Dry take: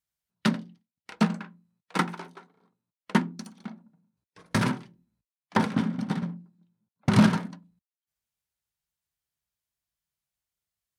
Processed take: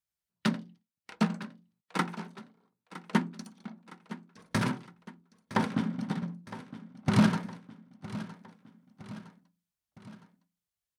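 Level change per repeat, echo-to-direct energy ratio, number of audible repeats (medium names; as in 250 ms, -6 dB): -5.5 dB, -14.0 dB, 3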